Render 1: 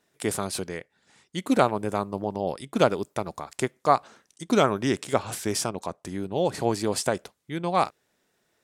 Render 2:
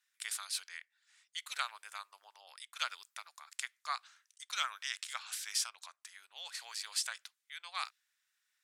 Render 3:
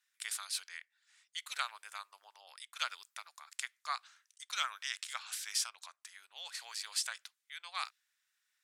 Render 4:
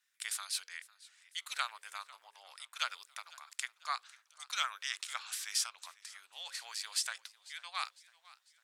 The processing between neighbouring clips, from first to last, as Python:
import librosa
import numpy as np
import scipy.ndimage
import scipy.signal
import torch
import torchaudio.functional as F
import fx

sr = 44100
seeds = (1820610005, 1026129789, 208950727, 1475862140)

y1 = scipy.signal.sosfilt(scipy.signal.butter(4, 1400.0, 'highpass', fs=sr, output='sos'), x)
y1 = fx.dynamic_eq(y1, sr, hz=4100.0, q=1.2, threshold_db=-49.0, ratio=4.0, max_db=5)
y1 = y1 * librosa.db_to_amplitude(-7.0)
y2 = y1
y3 = fx.hum_notches(y2, sr, base_hz=60, count=9)
y3 = fx.echo_warbled(y3, sr, ms=500, feedback_pct=47, rate_hz=2.8, cents=113, wet_db=-21)
y3 = y3 * librosa.db_to_amplitude(1.0)